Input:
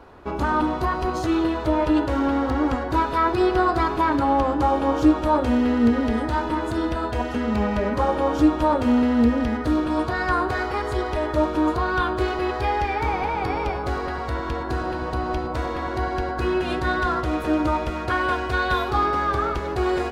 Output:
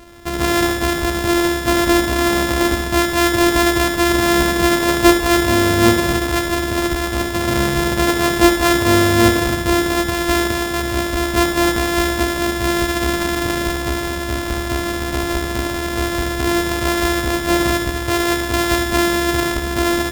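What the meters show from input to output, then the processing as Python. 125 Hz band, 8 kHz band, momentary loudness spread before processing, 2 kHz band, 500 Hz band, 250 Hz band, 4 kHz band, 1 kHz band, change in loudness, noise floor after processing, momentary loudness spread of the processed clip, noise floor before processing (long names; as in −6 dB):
+6.0 dB, can't be measured, 7 LU, +9.0 dB, +5.5 dB, +4.5 dB, +15.0 dB, +2.0 dB, +6.0 dB, −23 dBFS, 7 LU, −29 dBFS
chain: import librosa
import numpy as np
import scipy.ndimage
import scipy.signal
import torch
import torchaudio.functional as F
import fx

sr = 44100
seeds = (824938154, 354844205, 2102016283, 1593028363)

p1 = np.r_[np.sort(x[:len(x) // 128 * 128].reshape(-1, 128), axis=1).ravel(), x[len(x) // 128 * 128:]]
p2 = p1 + fx.echo_feedback(p1, sr, ms=72, feedback_pct=51, wet_db=-9.0, dry=0)
y = F.gain(torch.from_numpy(p2), 5.0).numpy()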